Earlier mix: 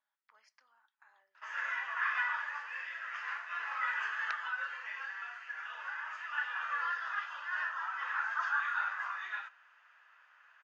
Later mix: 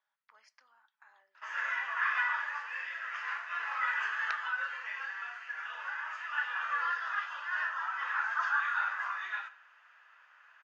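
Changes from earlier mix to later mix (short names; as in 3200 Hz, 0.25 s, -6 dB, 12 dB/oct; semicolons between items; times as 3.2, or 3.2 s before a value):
speech +3.5 dB; background: send +10.0 dB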